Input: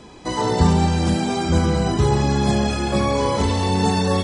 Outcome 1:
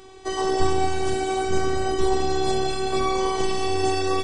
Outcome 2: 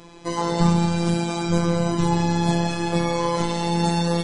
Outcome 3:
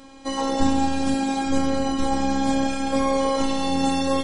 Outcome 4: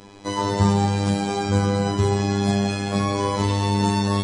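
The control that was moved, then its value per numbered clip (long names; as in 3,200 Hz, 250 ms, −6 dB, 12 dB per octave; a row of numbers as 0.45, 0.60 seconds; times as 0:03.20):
phases set to zero, frequency: 380, 170, 270, 100 Hertz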